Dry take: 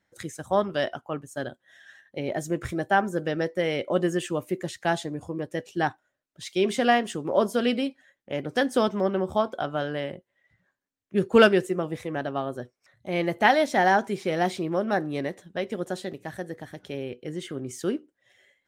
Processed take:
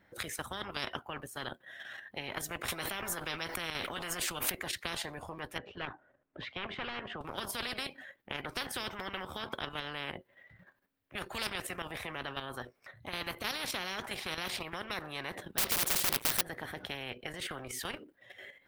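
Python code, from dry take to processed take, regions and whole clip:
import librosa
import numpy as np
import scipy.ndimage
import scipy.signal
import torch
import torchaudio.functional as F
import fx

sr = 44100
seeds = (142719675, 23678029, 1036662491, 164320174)

y = fx.chain(x, sr, fx.doubler(ms=12.0, db=-10.5),
    fx.pre_swell(db_per_s=29.0), at=(2.68, 4.55))
y = fx.chain(y, sr, fx.overload_stage(gain_db=18.0),
    fx.spacing_loss(db_at_10k=45),
    fx.band_squash(depth_pct=40), at=(5.58, 7.21))
y = fx.chain(y, sr, fx.leveller(passes=5),
    fx.overflow_wrap(gain_db=18.5), at=(15.58, 16.41))
y = fx.peak_eq(y, sr, hz=6800.0, db=-14.5, octaves=1.1)
y = fx.level_steps(y, sr, step_db=9)
y = fx.spectral_comp(y, sr, ratio=10.0)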